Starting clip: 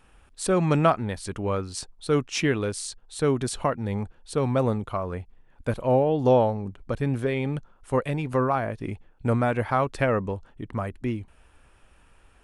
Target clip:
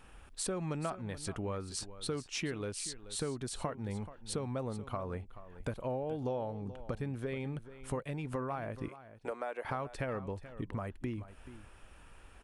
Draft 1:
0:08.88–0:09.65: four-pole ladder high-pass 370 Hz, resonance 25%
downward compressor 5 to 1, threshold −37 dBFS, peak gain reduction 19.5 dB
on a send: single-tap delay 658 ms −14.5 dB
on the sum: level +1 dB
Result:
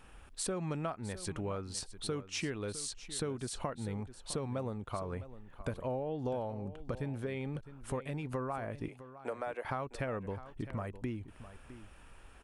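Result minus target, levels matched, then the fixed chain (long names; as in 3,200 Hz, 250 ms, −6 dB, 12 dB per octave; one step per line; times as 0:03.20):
echo 227 ms late
0:08.88–0:09.65: four-pole ladder high-pass 370 Hz, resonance 25%
downward compressor 5 to 1, threshold −37 dBFS, peak gain reduction 19.5 dB
on a send: single-tap delay 431 ms −14.5 dB
on the sum: level +1 dB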